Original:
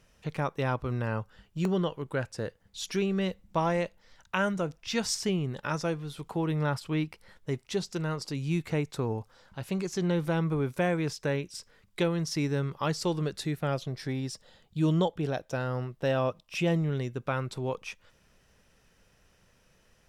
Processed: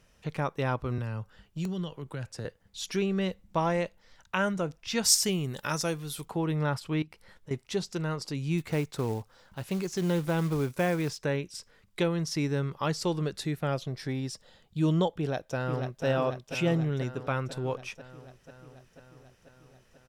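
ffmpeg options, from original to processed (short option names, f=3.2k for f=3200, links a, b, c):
-filter_complex "[0:a]asettb=1/sr,asplit=3[a][b][c];[a]atrim=end=0.984[d];[b]atrim=start=0.98:end=2.45,asetpts=PTS-STARTPTS,afade=t=in:d=0.004:c=qsin,afade=t=out:st=1.466:d=0.004:c=qsin,acrossover=split=180|3000[e][f][g];[f]acompressor=threshold=-38dB:ratio=6:attack=3.2:release=140:knee=2.83:detection=peak[h];[e][h][g]amix=inputs=3:normalize=0[i];[c]atrim=start=2.446[j];[d][i]acrossfade=d=0.004:c1=hsin:c2=qsin[k];[k][j]acrossfade=d=0.004:c1=qsin:c2=hsin,asplit=3[l][m][n];[l]afade=t=out:st=5.04:d=0.02[o];[m]aemphasis=mode=production:type=75fm,afade=t=in:st=5.04:d=0.02,afade=t=out:st=6.24:d=0.02[p];[n]afade=t=in:st=6.24:d=0.02[q];[o][p][q]amix=inputs=3:normalize=0,asettb=1/sr,asplit=3[r][s][t];[r]atrim=end=7.024[u];[s]atrim=start=7.02:end=7.51,asetpts=PTS-STARTPTS,afade=t=in:d=0.004:c=qsin,afade=t=out:st=0.486:d=0.004:c=qsin,acompressor=threshold=-44dB:ratio=4:attack=3.2:release=140:knee=1:detection=peak[v];[t]atrim=start=7.506[w];[u][v]acrossfade=d=0.004:c1=hsin:c2=qsin[x];[x][w]acrossfade=d=0.004:c1=qsin:c2=hsin,asplit=3[y][z][aa];[y]afade=t=out:st=8.57:d=0.02[ab];[z]acrusher=bits=5:mode=log:mix=0:aa=0.000001,afade=t=in:st=8.57:d=0.02,afade=t=out:st=11.18:d=0.02[ac];[aa]afade=t=in:st=11.18:d=0.02[ad];[ab][ac][ad]amix=inputs=3:normalize=0,asplit=2[ae][af];[af]afade=t=in:st=15.17:d=0.01,afade=t=out:st=16.05:d=0.01,aecho=0:1:490|980|1470|1960|2450|2940|3430|3920|4410|4900|5390:0.501187|0.350831|0.245582|0.171907|0.120335|0.0842345|0.0589642|0.0412749|0.0288924|0.0202247|0.0141573[ag];[ae][ag]amix=inputs=2:normalize=0"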